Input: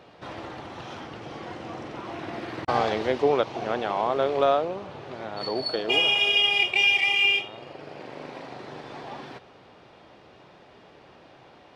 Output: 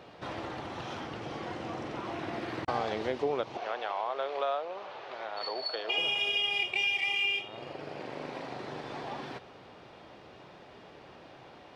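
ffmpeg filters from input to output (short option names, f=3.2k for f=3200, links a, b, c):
-filter_complex "[0:a]asettb=1/sr,asplit=3[a][b][c];[a]atrim=end=3.574[d];[b]atrim=start=3.57:end=5.98,asetpts=PTS-STARTPTS,afade=t=in:d=0.004:c=qsin,afade=t=out:st=2.406:d=0.004:c=qsin,acrossover=split=480 6300:gain=0.0708 1 0.0794[e][f][g];[e][f][g]amix=inputs=3:normalize=0[h];[c]atrim=start=5.976[i];[d][h]acrossfade=d=0.004:c1=hsin:c2=qsin[j];[j][i]acrossfade=d=0.004:c1=qsin:c2=hsin,acompressor=threshold=-34dB:ratio=2"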